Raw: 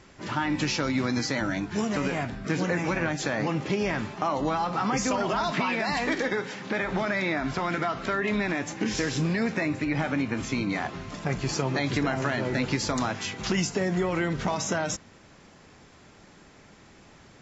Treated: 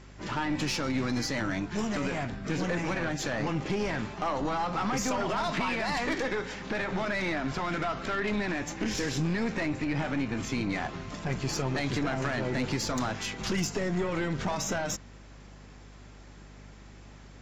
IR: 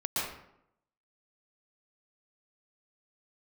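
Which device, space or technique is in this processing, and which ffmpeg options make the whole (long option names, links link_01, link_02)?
valve amplifier with mains hum: -af "aeval=exprs='(tanh(14.1*val(0)+0.4)-tanh(0.4))/14.1':channel_layout=same,aeval=exprs='val(0)+0.00355*(sin(2*PI*50*n/s)+sin(2*PI*2*50*n/s)/2+sin(2*PI*3*50*n/s)/3+sin(2*PI*4*50*n/s)/4+sin(2*PI*5*50*n/s)/5)':channel_layout=same"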